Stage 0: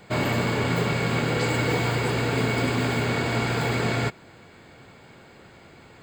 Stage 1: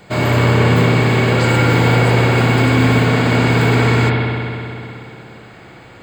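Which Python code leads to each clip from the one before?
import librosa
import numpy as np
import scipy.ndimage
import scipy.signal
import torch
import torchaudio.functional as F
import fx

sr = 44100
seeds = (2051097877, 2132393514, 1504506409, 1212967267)

y = fx.rev_spring(x, sr, rt60_s=2.8, pass_ms=(58,), chirp_ms=45, drr_db=-2.5)
y = F.gain(torch.from_numpy(y), 5.5).numpy()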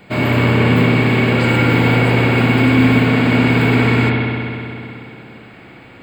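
y = fx.graphic_eq_15(x, sr, hz=(250, 2500, 6300), db=(7, 6, -9))
y = F.gain(torch.from_numpy(y), -2.5).numpy()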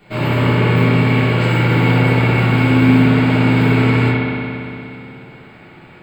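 y = fx.room_shoebox(x, sr, seeds[0], volume_m3=57.0, walls='mixed', distance_m=1.2)
y = F.gain(torch.from_numpy(y), -8.0).numpy()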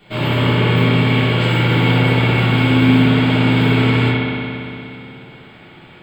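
y = fx.peak_eq(x, sr, hz=3300.0, db=10.5, octaves=0.32)
y = F.gain(torch.from_numpy(y), -1.0).numpy()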